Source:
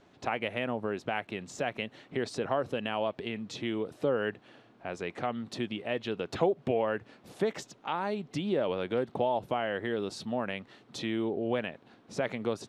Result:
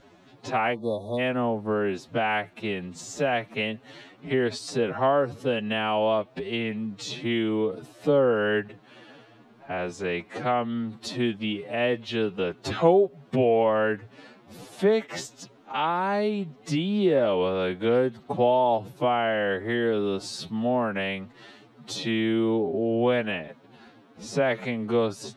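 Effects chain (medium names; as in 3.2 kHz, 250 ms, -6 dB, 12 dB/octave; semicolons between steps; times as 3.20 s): spectral selection erased 0.36–0.60 s, 1.2–3.4 kHz; time stretch by phase-locked vocoder 2×; trim +7 dB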